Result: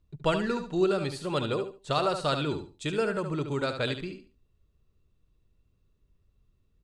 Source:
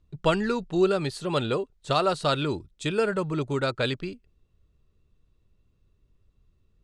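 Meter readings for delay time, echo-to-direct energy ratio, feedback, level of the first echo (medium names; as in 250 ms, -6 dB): 72 ms, -7.5 dB, 24%, -8.0 dB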